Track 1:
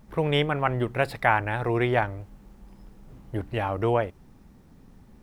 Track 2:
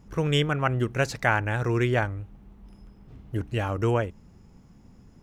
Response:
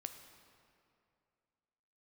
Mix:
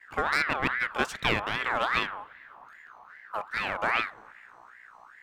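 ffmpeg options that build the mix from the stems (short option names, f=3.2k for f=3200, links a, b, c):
-filter_complex "[0:a]lowpass=3.9k,aeval=exprs='val(0)+0.0112*(sin(2*PI*60*n/s)+sin(2*PI*2*60*n/s)/2+sin(2*PI*3*60*n/s)/3+sin(2*PI*4*60*n/s)/4+sin(2*PI*5*60*n/s)/5)':c=same,volume=-7.5dB,asplit=2[a][b];[b]volume=-5.5dB[c];[1:a]aeval=exprs='clip(val(0),-1,0.0398)':c=same,volume=-1.5dB[d];[2:a]atrim=start_sample=2205[e];[c][e]afir=irnorm=-1:irlink=0[f];[a][d][f]amix=inputs=3:normalize=0,agate=range=-33dB:threshold=-49dB:ratio=3:detection=peak,lowshelf=f=110:g=-9,aeval=exprs='val(0)*sin(2*PI*1400*n/s+1400*0.35/2.5*sin(2*PI*2.5*n/s))':c=same"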